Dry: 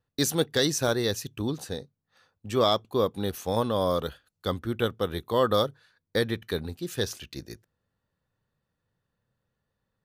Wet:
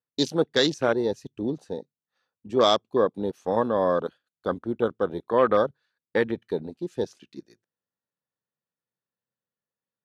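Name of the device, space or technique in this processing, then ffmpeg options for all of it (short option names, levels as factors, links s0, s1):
over-cleaned archive recording: -af "highpass=200,lowpass=7200,afwtdn=0.0251,volume=1.5"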